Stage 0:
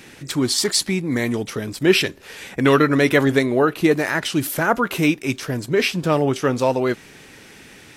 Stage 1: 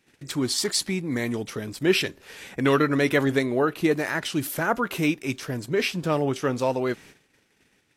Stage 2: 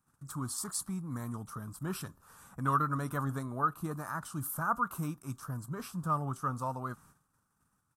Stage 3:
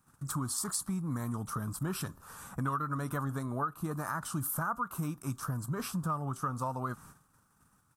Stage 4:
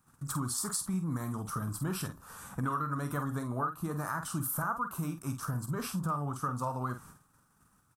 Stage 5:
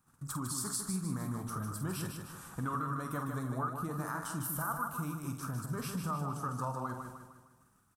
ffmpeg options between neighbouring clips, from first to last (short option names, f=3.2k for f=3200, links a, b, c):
-af "agate=range=-19dB:threshold=-41dB:ratio=16:detection=peak,volume=-5.5dB"
-af "firequalizer=gain_entry='entry(150,0);entry(380,-18);entry(1200,7);entry(2000,-25);entry(8700,0)':delay=0.05:min_phase=1,volume=-5dB"
-af "acompressor=threshold=-39dB:ratio=6,volume=8dB"
-filter_complex "[0:a]asplit=2[a][b];[b]adelay=48,volume=-8.5dB[c];[a][c]amix=inputs=2:normalize=0"
-af "aecho=1:1:153|306|459|612|765|918:0.501|0.231|0.106|0.0488|0.0224|0.0103,volume=-3.5dB"